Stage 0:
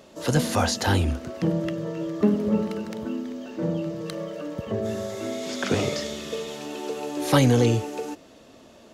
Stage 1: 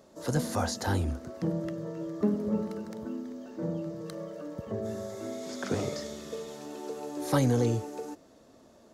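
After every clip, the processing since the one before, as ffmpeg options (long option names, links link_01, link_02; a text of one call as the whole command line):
ffmpeg -i in.wav -af "equalizer=frequency=2800:width_type=o:width=0.85:gain=-10,volume=-6.5dB" out.wav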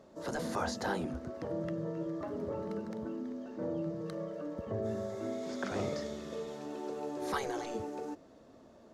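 ffmpeg -i in.wav -af "lowpass=frequency=2700:poles=1,afftfilt=real='re*lt(hypot(re,im),0.178)':imag='im*lt(hypot(re,im),0.178)':win_size=1024:overlap=0.75" out.wav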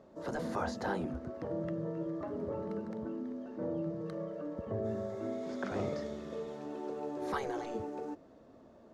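ffmpeg -i in.wav -af "highshelf=frequency=3200:gain=-10" out.wav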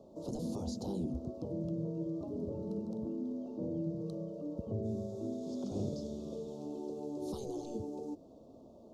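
ffmpeg -i in.wav -filter_complex "[0:a]acrossover=split=370|3200[link_01][link_02][link_03];[link_02]acompressor=threshold=-49dB:ratio=6[link_04];[link_01][link_04][link_03]amix=inputs=3:normalize=0,asuperstop=centerf=1800:order=4:qfactor=0.58,volume=2.5dB" out.wav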